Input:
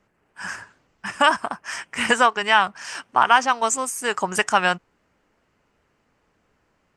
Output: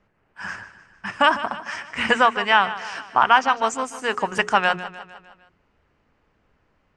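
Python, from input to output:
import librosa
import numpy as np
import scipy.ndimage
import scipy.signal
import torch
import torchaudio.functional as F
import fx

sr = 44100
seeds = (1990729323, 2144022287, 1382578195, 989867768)

y = scipy.signal.sosfilt(scipy.signal.butter(2, 4400.0, 'lowpass', fs=sr, output='sos'), x)
y = fx.low_shelf(y, sr, hz=97.0, db=8.0)
y = fx.hum_notches(y, sr, base_hz=60, count=7)
y = fx.echo_feedback(y, sr, ms=152, feedback_pct=54, wet_db=-14.5)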